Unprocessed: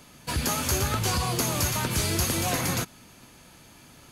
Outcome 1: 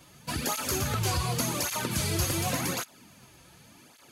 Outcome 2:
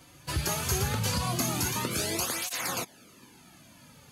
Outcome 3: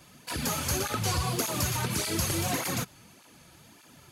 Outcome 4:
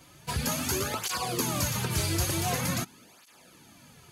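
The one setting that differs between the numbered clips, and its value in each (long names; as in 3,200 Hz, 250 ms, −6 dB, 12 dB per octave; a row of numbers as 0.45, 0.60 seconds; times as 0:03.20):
through-zero flanger with one copy inverted, nulls at: 0.88, 0.2, 1.7, 0.46 Hertz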